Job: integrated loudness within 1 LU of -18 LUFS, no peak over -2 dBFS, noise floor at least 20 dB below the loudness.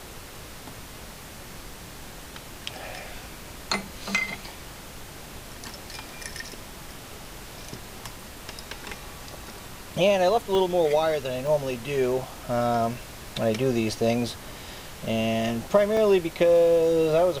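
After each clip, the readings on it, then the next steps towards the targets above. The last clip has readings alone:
dropouts 3; longest dropout 1.4 ms; noise floor -42 dBFS; noise floor target -45 dBFS; loudness -25.0 LUFS; peak level -7.5 dBFS; loudness target -18.0 LUFS
-> interpolate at 10.55/11.47/15.97 s, 1.4 ms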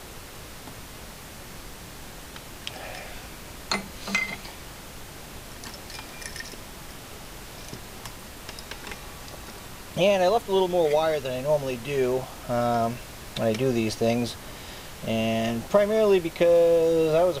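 dropouts 0; noise floor -42 dBFS; noise floor target -45 dBFS
-> noise print and reduce 6 dB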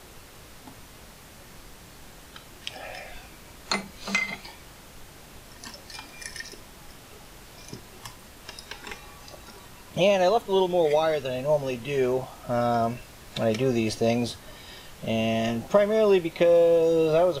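noise floor -48 dBFS; loudness -24.5 LUFS; peak level -7.5 dBFS; loudness target -18.0 LUFS
-> trim +6.5 dB; peak limiter -2 dBFS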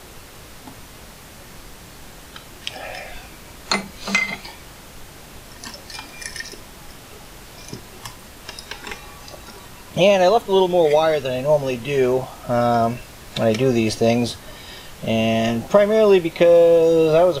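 loudness -18.0 LUFS; peak level -2.0 dBFS; noise floor -42 dBFS

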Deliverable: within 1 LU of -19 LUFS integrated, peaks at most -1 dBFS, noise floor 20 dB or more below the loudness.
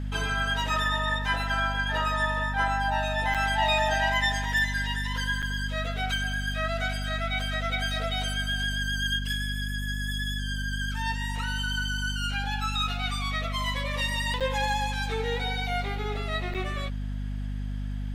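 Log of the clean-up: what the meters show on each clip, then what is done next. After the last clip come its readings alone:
dropouts 4; longest dropout 6.7 ms; hum 50 Hz; highest harmonic 250 Hz; hum level -29 dBFS; loudness -28.0 LUFS; peak level -13.0 dBFS; loudness target -19.0 LUFS
-> interpolate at 3.34/5.42/14.40/16.54 s, 6.7 ms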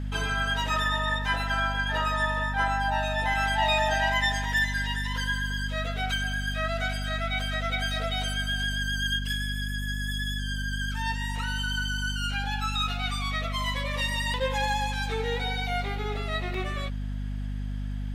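dropouts 0; hum 50 Hz; highest harmonic 250 Hz; hum level -29 dBFS
-> de-hum 50 Hz, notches 5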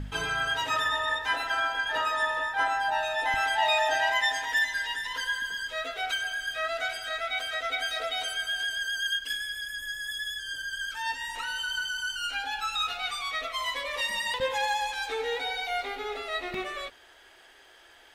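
hum not found; loudness -29.0 LUFS; peak level -13.5 dBFS; loudness target -19.0 LUFS
-> trim +10 dB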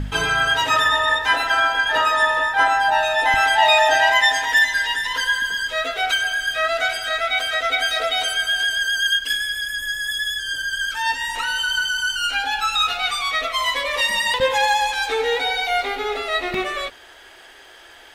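loudness -19.0 LUFS; peak level -3.5 dBFS; noise floor -45 dBFS

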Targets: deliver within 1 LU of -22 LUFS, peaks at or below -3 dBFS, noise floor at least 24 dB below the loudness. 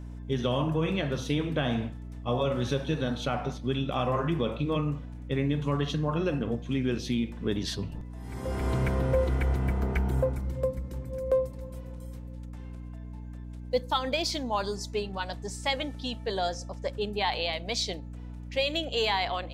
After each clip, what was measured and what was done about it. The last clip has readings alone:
hum 60 Hz; highest harmonic 300 Hz; hum level -38 dBFS; loudness -30.0 LUFS; peak level -15.5 dBFS; loudness target -22.0 LUFS
-> hum notches 60/120/180/240/300 Hz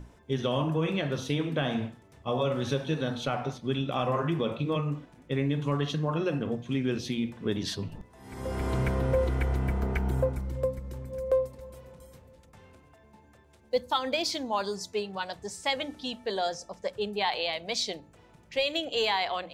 hum not found; loudness -30.5 LUFS; peak level -15.5 dBFS; loudness target -22.0 LUFS
-> trim +8.5 dB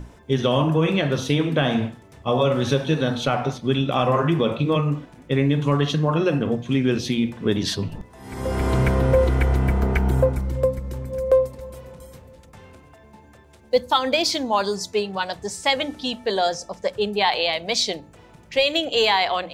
loudness -22.0 LUFS; peak level -7.0 dBFS; noise floor -49 dBFS

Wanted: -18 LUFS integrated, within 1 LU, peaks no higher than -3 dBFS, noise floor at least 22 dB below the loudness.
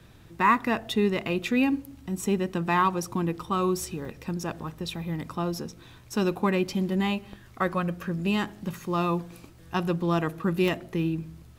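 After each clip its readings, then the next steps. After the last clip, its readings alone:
dropouts 2; longest dropout 3.5 ms; loudness -28.0 LUFS; peak level -10.0 dBFS; loudness target -18.0 LUFS
-> interpolate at 4.05/10.68 s, 3.5 ms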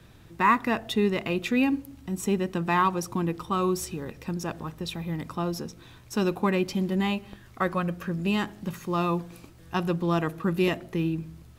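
dropouts 0; loudness -28.0 LUFS; peak level -10.0 dBFS; loudness target -18.0 LUFS
-> trim +10 dB; peak limiter -3 dBFS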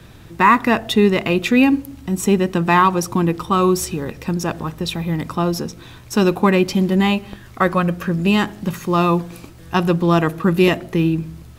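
loudness -18.0 LUFS; peak level -3.0 dBFS; noise floor -41 dBFS

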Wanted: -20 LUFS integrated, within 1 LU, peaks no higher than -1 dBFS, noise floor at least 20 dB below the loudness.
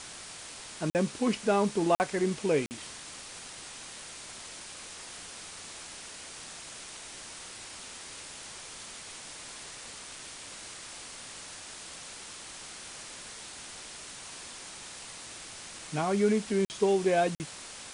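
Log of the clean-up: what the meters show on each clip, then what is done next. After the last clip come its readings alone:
dropouts 5; longest dropout 49 ms; noise floor -45 dBFS; noise floor target -55 dBFS; loudness -34.5 LUFS; peak level -13.5 dBFS; loudness target -20.0 LUFS
-> interpolate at 0.90/1.95/2.66/16.65/17.35 s, 49 ms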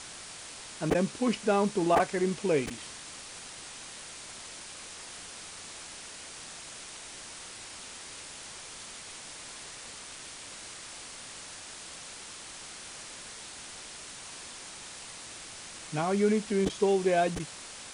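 dropouts 0; noise floor -45 dBFS; noise floor target -54 dBFS
-> noise reduction 9 dB, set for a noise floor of -45 dBFS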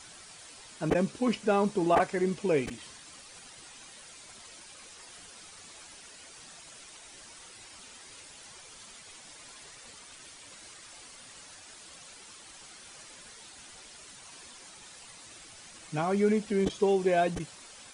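noise floor -51 dBFS; loudness -28.5 LUFS; peak level -13.0 dBFS; loudness target -20.0 LUFS
-> trim +8.5 dB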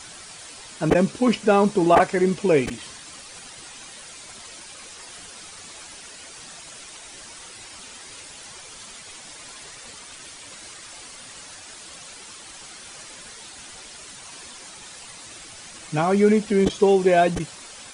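loudness -20.0 LUFS; peak level -4.5 dBFS; noise floor -42 dBFS

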